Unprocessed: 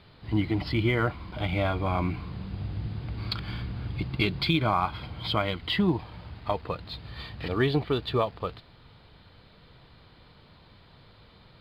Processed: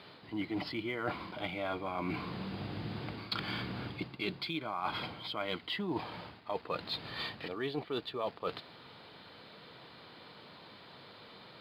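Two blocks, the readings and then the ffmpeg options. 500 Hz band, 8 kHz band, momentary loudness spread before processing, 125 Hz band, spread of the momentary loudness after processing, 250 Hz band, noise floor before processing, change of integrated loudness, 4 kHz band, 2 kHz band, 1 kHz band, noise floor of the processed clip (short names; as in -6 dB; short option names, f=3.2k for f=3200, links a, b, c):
-8.0 dB, n/a, 11 LU, -15.0 dB, 16 LU, -9.5 dB, -56 dBFS, -9.0 dB, -6.0 dB, -7.0 dB, -7.5 dB, -55 dBFS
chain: -af "highpass=240,areverse,acompressor=threshold=-37dB:ratio=20,areverse,volume=4.5dB"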